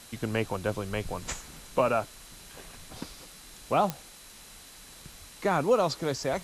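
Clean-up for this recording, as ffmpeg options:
-af "adeclick=t=4,bandreject=f=4k:w=30,afwtdn=0.004"

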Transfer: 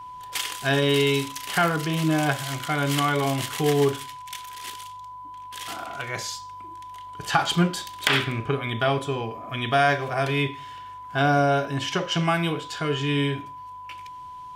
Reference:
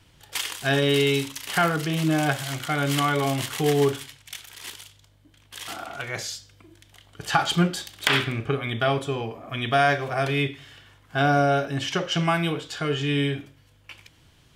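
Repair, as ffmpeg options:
-af "bandreject=f=1k:w=30"

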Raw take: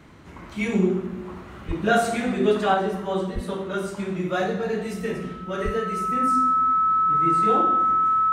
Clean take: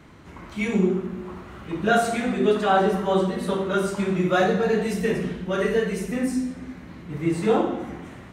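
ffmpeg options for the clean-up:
-filter_complex "[0:a]bandreject=f=1.3k:w=30,asplit=3[a][b][c];[a]afade=t=out:st=1.67:d=0.02[d];[b]highpass=f=140:w=0.5412,highpass=f=140:w=1.3066,afade=t=in:st=1.67:d=0.02,afade=t=out:st=1.79:d=0.02[e];[c]afade=t=in:st=1.79:d=0.02[f];[d][e][f]amix=inputs=3:normalize=0,asplit=3[g][h][i];[g]afade=t=out:st=3.34:d=0.02[j];[h]highpass=f=140:w=0.5412,highpass=f=140:w=1.3066,afade=t=in:st=3.34:d=0.02,afade=t=out:st=3.46:d=0.02[k];[i]afade=t=in:st=3.46:d=0.02[l];[j][k][l]amix=inputs=3:normalize=0,asplit=3[m][n][o];[m]afade=t=out:st=5.64:d=0.02[p];[n]highpass=f=140:w=0.5412,highpass=f=140:w=1.3066,afade=t=in:st=5.64:d=0.02,afade=t=out:st=5.76:d=0.02[q];[o]afade=t=in:st=5.76:d=0.02[r];[p][q][r]amix=inputs=3:normalize=0,asetnsamples=n=441:p=0,asendcmd='2.74 volume volume 4.5dB',volume=0dB"

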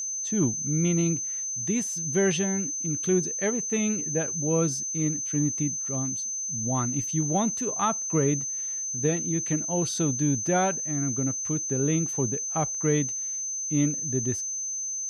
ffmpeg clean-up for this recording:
-af "bandreject=f=6.2k:w=30"

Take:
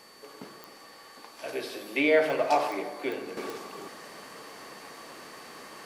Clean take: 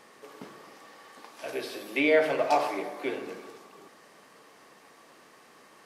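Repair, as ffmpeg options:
-af "adeclick=t=4,bandreject=f=4.5k:w=30,agate=range=-21dB:threshold=-42dB,asetnsamples=n=441:p=0,asendcmd='3.37 volume volume -9.5dB',volume=0dB"

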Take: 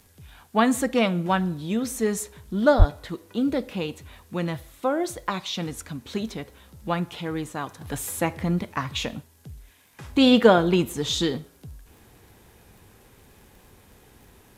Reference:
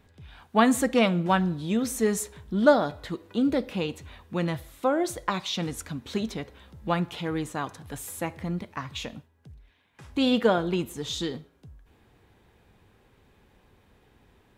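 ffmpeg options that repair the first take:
-filter_complex "[0:a]adeclick=t=4,asplit=3[a][b][c];[a]afade=t=out:st=2.78:d=0.02[d];[b]highpass=f=140:w=0.5412,highpass=f=140:w=1.3066,afade=t=in:st=2.78:d=0.02,afade=t=out:st=2.9:d=0.02[e];[c]afade=t=in:st=2.9:d=0.02[f];[d][e][f]amix=inputs=3:normalize=0,agate=range=-21dB:threshold=-46dB,asetnsamples=n=441:p=0,asendcmd='7.81 volume volume -6.5dB',volume=0dB"

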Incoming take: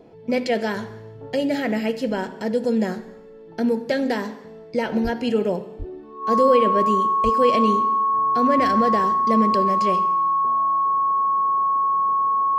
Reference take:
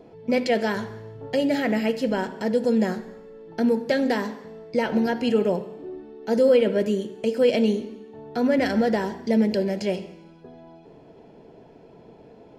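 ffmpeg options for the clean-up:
-filter_complex "[0:a]bandreject=f=1.1k:w=30,asplit=3[a][b][c];[a]afade=t=out:st=5.03:d=0.02[d];[b]highpass=f=140:w=0.5412,highpass=f=140:w=1.3066,afade=t=in:st=5.03:d=0.02,afade=t=out:st=5.15:d=0.02[e];[c]afade=t=in:st=5.15:d=0.02[f];[d][e][f]amix=inputs=3:normalize=0,asplit=3[g][h][i];[g]afade=t=out:st=5.78:d=0.02[j];[h]highpass=f=140:w=0.5412,highpass=f=140:w=1.3066,afade=t=in:st=5.78:d=0.02,afade=t=out:st=5.9:d=0.02[k];[i]afade=t=in:st=5.9:d=0.02[l];[j][k][l]amix=inputs=3:normalize=0,asplit=3[m][n][o];[m]afade=t=out:st=7.23:d=0.02[p];[n]highpass=f=140:w=0.5412,highpass=f=140:w=1.3066,afade=t=in:st=7.23:d=0.02,afade=t=out:st=7.35:d=0.02[q];[o]afade=t=in:st=7.35:d=0.02[r];[p][q][r]amix=inputs=3:normalize=0"

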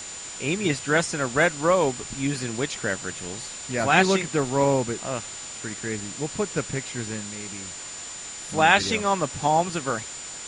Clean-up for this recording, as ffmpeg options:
-af "bandreject=f=7.1k:w=30,afwtdn=0.014"

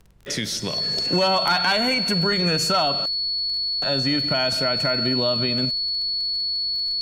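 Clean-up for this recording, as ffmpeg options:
-af "adeclick=t=4,bandreject=f=49.2:t=h:w=4,bandreject=f=98.4:t=h:w=4,bandreject=f=147.6:t=h:w=4,bandreject=f=196.8:t=h:w=4,bandreject=f=4.4k:w=30,agate=range=-21dB:threshold=-18dB"

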